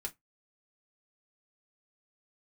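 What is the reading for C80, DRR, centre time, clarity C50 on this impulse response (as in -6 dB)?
35.5 dB, 0.5 dB, 6 ms, 24.0 dB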